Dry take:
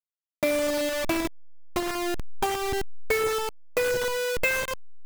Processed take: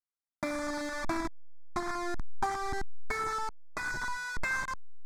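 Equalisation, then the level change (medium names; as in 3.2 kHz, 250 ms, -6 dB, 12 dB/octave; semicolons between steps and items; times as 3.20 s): distance through air 88 m; peaking EQ 80 Hz -6.5 dB 2 oct; static phaser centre 1.2 kHz, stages 4; 0.0 dB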